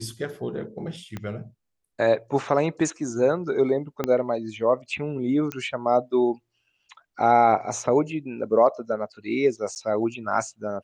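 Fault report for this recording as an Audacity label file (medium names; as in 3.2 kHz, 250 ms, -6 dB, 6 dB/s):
1.170000	1.170000	pop -19 dBFS
4.040000	4.040000	pop -11 dBFS
5.520000	5.520000	pop -14 dBFS
9.750000	9.760000	dropout 9.6 ms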